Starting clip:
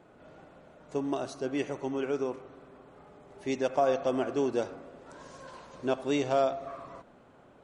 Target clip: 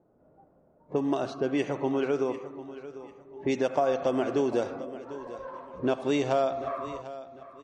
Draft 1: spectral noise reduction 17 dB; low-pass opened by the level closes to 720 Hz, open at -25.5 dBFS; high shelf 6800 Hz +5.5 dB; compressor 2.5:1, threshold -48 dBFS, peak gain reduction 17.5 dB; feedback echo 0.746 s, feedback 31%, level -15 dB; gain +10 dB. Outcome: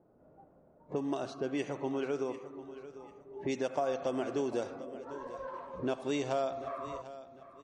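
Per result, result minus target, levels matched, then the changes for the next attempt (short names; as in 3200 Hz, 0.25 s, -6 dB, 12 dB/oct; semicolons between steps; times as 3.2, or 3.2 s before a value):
compressor: peak gain reduction +7 dB; 8000 Hz band +4.5 dB
change: compressor 2.5:1, threshold -36.5 dBFS, peak gain reduction 10.5 dB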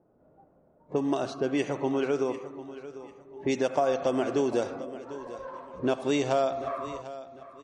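8000 Hz band +4.5 dB
change: high shelf 6800 Hz -4.5 dB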